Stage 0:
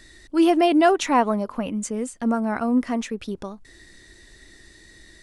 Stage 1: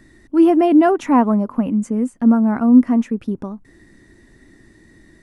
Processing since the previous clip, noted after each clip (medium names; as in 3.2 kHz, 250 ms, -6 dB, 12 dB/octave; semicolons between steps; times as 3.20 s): ten-band graphic EQ 125 Hz +8 dB, 250 Hz +11 dB, 1 kHz +4 dB, 4 kHz -10 dB, 8 kHz -5 dB; trim -2 dB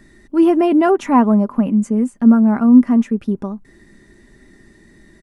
comb 5 ms, depth 35%; trim +1 dB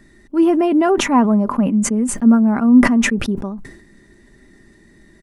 decay stretcher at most 72 dB/s; trim -1.5 dB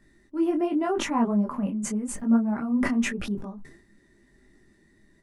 detune thickener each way 31 cents; trim -7.5 dB